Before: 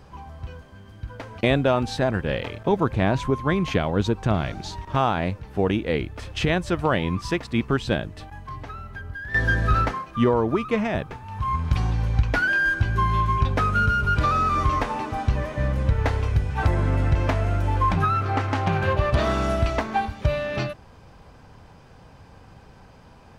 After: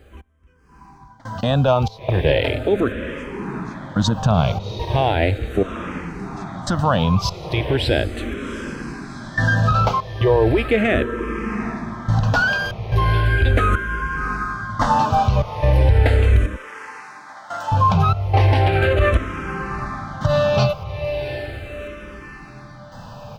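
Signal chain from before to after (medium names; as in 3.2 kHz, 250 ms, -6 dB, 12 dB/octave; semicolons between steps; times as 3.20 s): bit crusher 12-bit; peak limiter -18 dBFS, peak gain reduction 9.5 dB; trance gate "x.....xxx.xxx" 72 bpm -24 dB; echo that smears into a reverb 754 ms, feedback 55%, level -10 dB; level rider gain up to 10.5 dB; 16.56–17.72 s: high-pass 740 Hz 12 dB/octave; barber-pole phaser -0.37 Hz; trim +2.5 dB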